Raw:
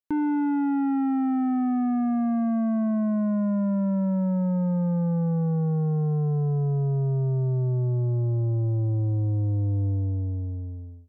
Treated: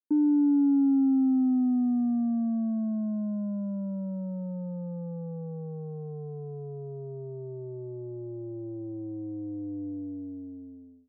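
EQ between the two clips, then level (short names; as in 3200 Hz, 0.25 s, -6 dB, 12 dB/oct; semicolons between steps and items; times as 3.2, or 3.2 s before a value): ladder band-pass 320 Hz, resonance 55%; +5.5 dB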